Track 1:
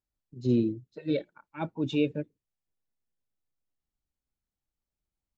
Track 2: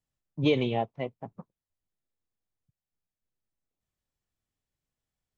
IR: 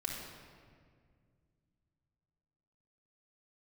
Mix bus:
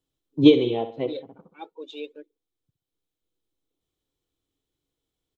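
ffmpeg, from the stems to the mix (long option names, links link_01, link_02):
-filter_complex "[0:a]highpass=frequency=440:width=0.5412,highpass=frequency=440:width=1.3066,aphaser=in_gain=1:out_gain=1:delay=3.9:decay=0.62:speed=0.42:type=triangular,volume=-9dB,asplit=2[link_01][link_02];[1:a]volume=2.5dB,asplit=2[link_03][link_04];[link_04]volume=-15dB[link_05];[link_02]apad=whole_len=236848[link_06];[link_03][link_06]sidechaincompress=threshold=-48dB:ratio=10:attack=40:release=1350[link_07];[link_05]aecho=0:1:65|130|195|260|325:1|0.35|0.122|0.0429|0.015[link_08];[link_01][link_07][link_08]amix=inputs=3:normalize=0,superequalizer=6b=3.55:7b=2.82:11b=0.631:13b=2.24"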